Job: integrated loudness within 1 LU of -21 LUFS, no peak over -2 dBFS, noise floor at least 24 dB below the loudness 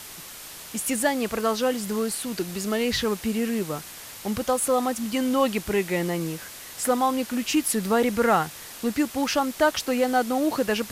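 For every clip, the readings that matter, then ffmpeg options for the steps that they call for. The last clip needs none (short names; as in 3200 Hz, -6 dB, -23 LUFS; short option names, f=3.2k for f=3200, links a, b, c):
noise floor -41 dBFS; noise floor target -49 dBFS; loudness -25.0 LUFS; peak -10.0 dBFS; loudness target -21.0 LUFS
-> -af "afftdn=nr=8:nf=-41"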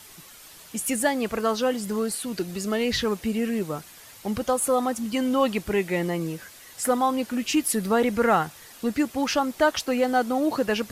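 noise floor -47 dBFS; noise floor target -49 dBFS
-> -af "afftdn=nr=6:nf=-47"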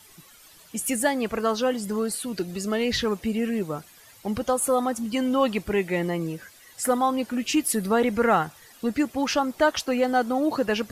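noise floor -52 dBFS; loudness -25.0 LUFS; peak -10.5 dBFS; loudness target -21.0 LUFS
-> -af "volume=4dB"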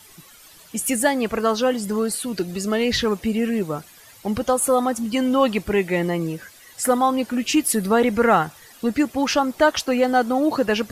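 loudness -21.0 LUFS; peak -6.5 dBFS; noise floor -48 dBFS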